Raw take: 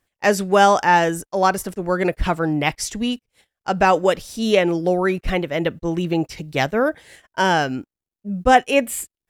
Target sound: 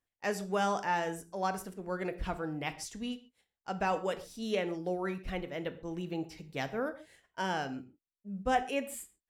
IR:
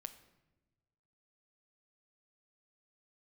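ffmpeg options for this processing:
-filter_complex "[1:a]atrim=start_sample=2205,afade=type=out:start_time=0.29:duration=0.01,atrim=end_sample=13230,asetrate=70560,aresample=44100[link_01];[0:a][link_01]afir=irnorm=-1:irlink=0,volume=-7dB"

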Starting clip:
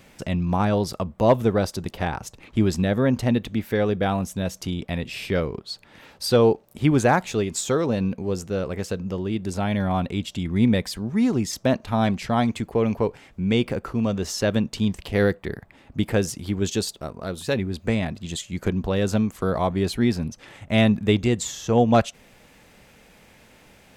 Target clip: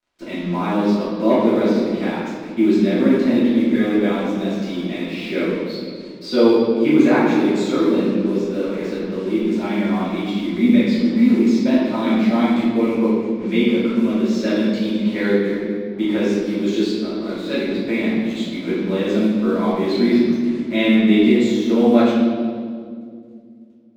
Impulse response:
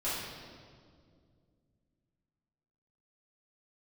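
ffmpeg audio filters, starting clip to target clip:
-filter_complex "[0:a]highpass=frequency=200:width=0.5412,highpass=frequency=200:width=1.3066,equalizer=frequency=220:width_type=q:width=4:gain=7,equalizer=frequency=330:width_type=q:width=4:gain=10,equalizer=frequency=700:width_type=q:width=4:gain=-5,equalizer=frequency=2200:width_type=q:width=4:gain=9,equalizer=frequency=3900:width_type=q:width=4:gain=8,lowpass=frequency=7400:width=0.5412,lowpass=frequency=7400:width=1.3066,acrusher=bits=5:mix=0:aa=0.5,aemphasis=mode=reproduction:type=cd[link_01];[1:a]atrim=start_sample=2205[link_02];[link_01][link_02]afir=irnorm=-1:irlink=0,volume=-5.5dB"

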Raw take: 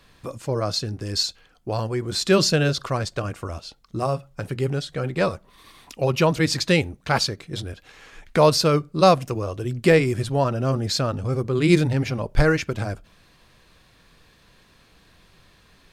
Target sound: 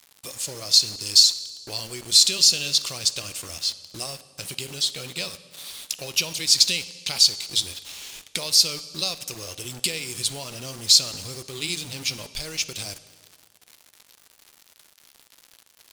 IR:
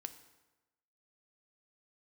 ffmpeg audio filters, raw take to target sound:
-filter_complex "[0:a]acompressor=threshold=-24dB:ratio=6,aexciter=amount=11.1:drive=7.4:freq=2500,acrusher=bits=4:mix=0:aa=0.000001,asplit=2[link_01][link_02];[1:a]atrim=start_sample=2205,asetrate=25578,aresample=44100,lowshelf=frequency=220:gain=-5.5[link_03];[link_02][link_03]afir=irnorm=-1:irlink=0,volume=2.5dB[link_04];[link_01][link_04]amix=inputs=2:normalize=0,volume=-16.5dB"

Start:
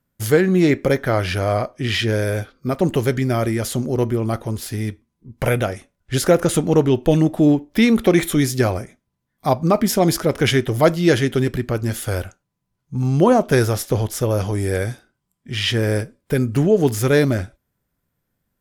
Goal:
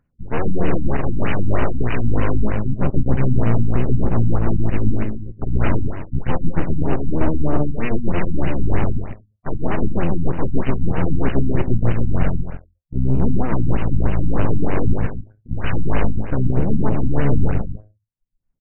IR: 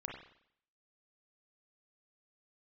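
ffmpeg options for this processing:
-filter_complex "[0:a]asplit=2[link_01][link_02];[1:a]atrim=start_sample=2205,asetrate=57330,aresample=44100[link_03];[link_02][link_03]afir=irnorm=-1:irlink=0,volume=-11.5dB[link_04];[link_01][link_04]amix=inputs=2:normalize=0,asplit=2[link_05][link_06];[link_06]asetrate=22050,aresample=44100,atempo=2,volume=-4dB[link_07];[link_05][link_07]amix=inputs=2:normalize=0,highshelf=frequency=2100:gain=5.5,bandreject=frequency=105.4:width_type=h:width=4,bandreject=frequency=210.8:width_type=h:width=4,bandreject=frequency=316.2:width_type=h:width=4,bandreject=frequency=421.6:width_type=h:width=4,bandreject=frequency=527:width_type=h:width=4,bandreject=frequency=632.4:width_type=h:width=4,bandreject=frequency=737.8:width_type=h:width=4,areverse,acompressor=threshold=-25dB:ratio=16,areverse,aeval=exprs='0.2*(cos(1*acos(clip(val(0)/0.2,-1,1)))-cos(1*PI/2))+0.0891*(cos(8*acos(clip(val(0)/0.2,-1,1)))-cos(8*PI/2))':channel_layout=same,afftdn=noise_reduction=35:noise_floor=-47,aecho=1:1:131.2|274.1:0.794|0.316,acompressor=mode=upward:threshold=-44dB:ratio=2.5,lowshelf=frequency=200:gain=9,afftfilt=real='re*lt(b*sr/1024,290*pow(3100/290,0.5+0.5*sin(2*PI*3.2*pts/sr)))':imag='im*lt(b*sr/1024,290*pow(3100/290,0.5+0.5*sin(2*PI*3.2*pts/sr)))':win_size=1024:overlap=0.75,volume=-2dB"

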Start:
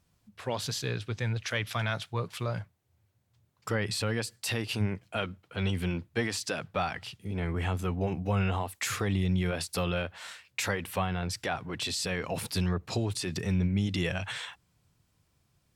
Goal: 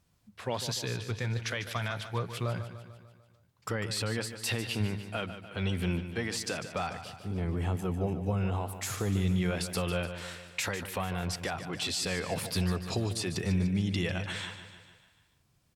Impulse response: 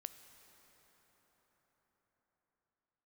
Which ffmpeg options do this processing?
-filter_complex "[0:a]asettb=1/sr,asplit=3[link_01][link_02][link_03];[link_01]atrim=end=6.904[link_04];[link_02]atrim=start=6.9:end=9.17,asetpts=PTS-STARTPTS,afade=type=in:duration=0.004:curve=qsin,afade=type=out:start_time=2.266:duration=0.004:curve=qsin,equalizer=frequency=2200:width_type=o:width=2.2:gain=-8.5[link_05];[link_03]atrim=start=9.166[link_06];[link_04][link_05]acrossfade=duration=0.004:curve1=hsin:curve2=qsin[link_07];[link_07][link_06]acrossfade=duration=0.004:curve1=qsin:curve2=hsin,alimiter=limit=-20.5dB:level=0:latency=1:release=250,aecho=1:1:148|296|444|592|740|888:0.282|0.161|0.0916|0.0522|0.0298|0.017"

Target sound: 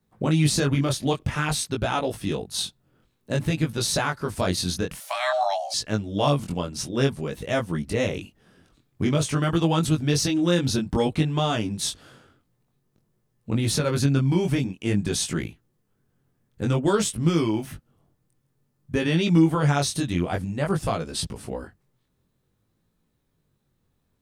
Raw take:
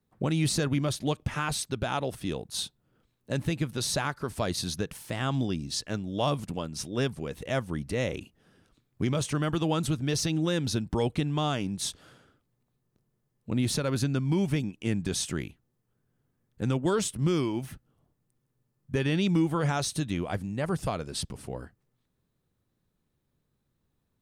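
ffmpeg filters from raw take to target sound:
ffmpeg -i in.wav -filter_complex "[0:a]flanger=delay=18:depth=4.8:speed=0.52,asettb=1/sr,asplit=3[link_01][link_02][link_03];[link_01]atrim=end=5.004[link_04];[link_02]atrim=start=5:end=5.74,asetpts=PTS-STARTPTS,afade=type=in:duration=0.004:curve=qsin,afade=type=out:start_time=0.736:duration=0.004:curve=qsin,afreqshift=490[link_05];[link_03]atrim=start=5.736[link_06];[link_04][link_05]acrossfade=duration=0.004:curve1=hsin:curve2=qsin[link_07];[link_07][link_06]acrossfade=duration=0.004:curve1=qsin:curve2=hsin,volume=8dB" out.wav

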